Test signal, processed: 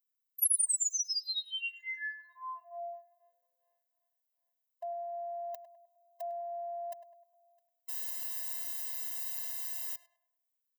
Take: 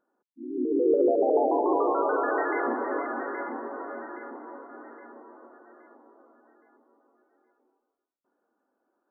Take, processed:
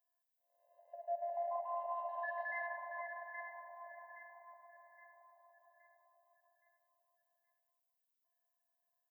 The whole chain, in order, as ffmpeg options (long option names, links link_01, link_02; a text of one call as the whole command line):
ffmpeg -i in.wav -filter_complex "[0:a]aemphasis=mode=production:type=riaa,asplit=2[link_01][link_02];[link_02]asoftclip=type=tanh:threshold=-20dB,volume=-10.5dB[link_03];[link_01][link_03]amix=inputs=2:normalize=0,equalizer=frequency=350:width_type=o:width=0.32:gain=-4.5,afftfilt=real='hypot(re,im)*cos(PI*b)':imag='0':win_size=512:overlap=0.75,asplit=2[link_04][link_05];[link_05]adelay=102,lowpass=frequency=1400:poles=1,volume=-9dB,asplit=2[link_06][link_07];[link_07]adelay=102,lowpass=frequency=1400:poles=1,volume=0.49,asplit=2[link_08][link_09];[link_09]adelay=102,lowpass=frequency=1400:poles=1,volume=0.49,asplit=2[link_10][link_11];[link_11]adelay=102,lowpass=frequency=1400:poles=1,volume=0.49,asplit=2[link_12][link_13];[link_13]adelay=102,lowpass=frequency=1400:poles=1,volume=0.49,asplit=2[link_14][link_15];[link_15]adelay=102,lowpass=frequency=1400:poles=1,volume=0.49[link_16];[link_06][link_08][link_10][link_12][link_14][link_16]amix=inputs=6:normalize=0[link_17];[link_04][link_17]amix=inputs=2:normalize=0,afftfilt=real='re*eq(mod(floor(b*sr/1024/520),2),1)':imag='im*eq(mod(floor(b*sr/1024/520),2),1)':win_size=1024:overlap=0.75,volume=-9dB" out.wav